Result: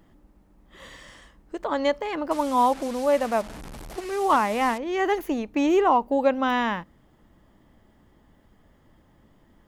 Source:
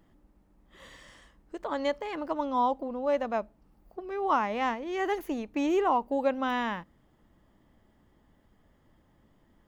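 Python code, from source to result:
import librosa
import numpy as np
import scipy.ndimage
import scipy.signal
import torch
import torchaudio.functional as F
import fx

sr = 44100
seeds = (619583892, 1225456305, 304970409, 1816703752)

y = fx.delta_mod(x, sr, bps=64000, step_db=-39.0, at=(2.31, 4.78))
y = F.gain(torch.from_numpy(y), 6.0).numpy()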